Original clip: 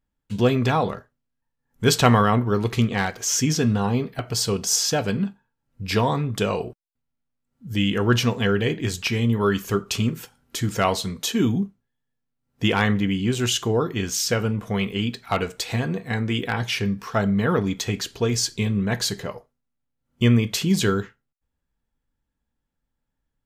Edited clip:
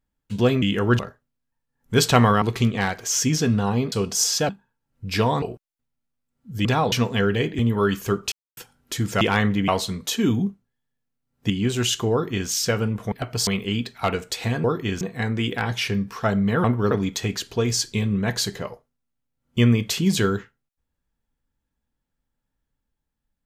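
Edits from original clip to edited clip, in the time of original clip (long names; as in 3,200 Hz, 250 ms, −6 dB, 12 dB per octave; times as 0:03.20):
0:00.62–0:00.89: swap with 0:07.81–0:08.18
0:02.32–0:02.59: move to 0:17.55
0:04.09–0:04.44: move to 0:14.75
0:05.01–0:05.26: remove
0:06.19–0:06.58: remove
0:08.85–0:09.22: remove
0:09.95–0:10.20: silence
0:12.66–0:13.13: move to 0:10.84
0:13.75–0:14.12: duplicate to 0:15.92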